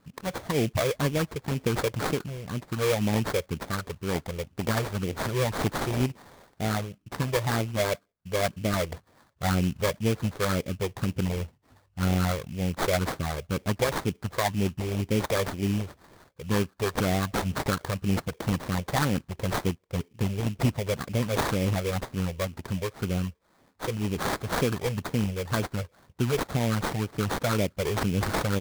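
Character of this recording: phasing stages 12, 2 Hz, lowest notch 230–1300 Hz; aliases and images of a low sample rate 2800 Hz, jitter 20%

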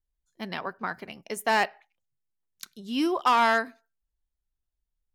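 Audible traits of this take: noise floor -84 dBFS; spectral tilt -1.0 dB/oct

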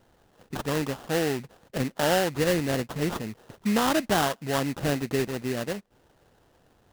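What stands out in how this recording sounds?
aliases and images of a low sample rate 2300 Hz, jitter 20%

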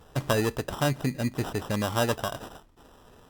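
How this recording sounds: aliases and images of a low sample rate 2200 Hz, jitter 0%; Vorbis

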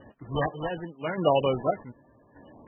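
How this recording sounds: chopped level 0.85 Hz, depth 60%, duty 45%; aliases and images of a low sample rate 3500 Hz, jitter 0%; MP3

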